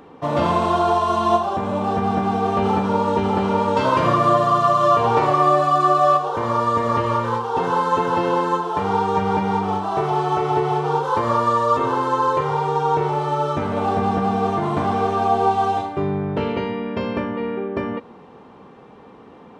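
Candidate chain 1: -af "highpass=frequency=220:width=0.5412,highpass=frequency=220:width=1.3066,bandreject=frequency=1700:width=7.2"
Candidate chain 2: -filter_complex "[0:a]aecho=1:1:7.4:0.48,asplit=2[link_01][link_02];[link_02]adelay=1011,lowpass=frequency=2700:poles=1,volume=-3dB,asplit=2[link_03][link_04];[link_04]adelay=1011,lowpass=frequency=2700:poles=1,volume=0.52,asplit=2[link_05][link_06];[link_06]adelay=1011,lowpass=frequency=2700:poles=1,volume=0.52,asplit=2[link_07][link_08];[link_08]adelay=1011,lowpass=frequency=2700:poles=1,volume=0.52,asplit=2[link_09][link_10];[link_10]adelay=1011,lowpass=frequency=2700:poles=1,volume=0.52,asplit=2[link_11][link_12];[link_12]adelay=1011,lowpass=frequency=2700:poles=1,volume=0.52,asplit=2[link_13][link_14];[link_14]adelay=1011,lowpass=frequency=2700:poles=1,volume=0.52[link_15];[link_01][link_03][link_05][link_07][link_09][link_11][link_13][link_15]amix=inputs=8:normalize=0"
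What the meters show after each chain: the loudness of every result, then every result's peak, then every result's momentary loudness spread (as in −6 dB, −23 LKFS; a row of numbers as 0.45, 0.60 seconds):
−20.0, −17.5 LKFS; −4.5, −2.5 dBFS; 9, 6 LU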